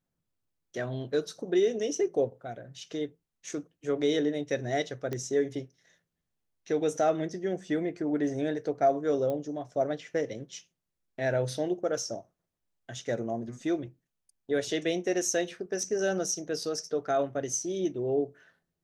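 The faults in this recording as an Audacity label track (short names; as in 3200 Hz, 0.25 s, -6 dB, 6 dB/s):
5.130000	5.130000	pop -20 dBFS
9.300000	9.300000	pop -22 dBFS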